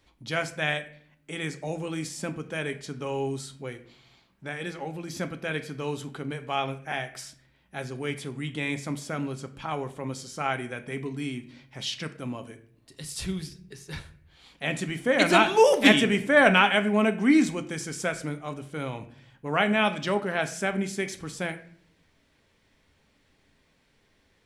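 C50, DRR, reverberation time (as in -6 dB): 14.5 dB, 8.0 dB, 0.55 s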